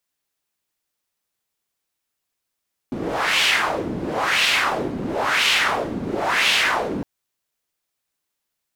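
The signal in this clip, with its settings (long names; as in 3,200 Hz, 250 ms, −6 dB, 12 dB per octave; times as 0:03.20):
wind from filtered noise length 4.11 s, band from 250 Hz, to 2,900 Hz, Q 2.2, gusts 4, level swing 9 dB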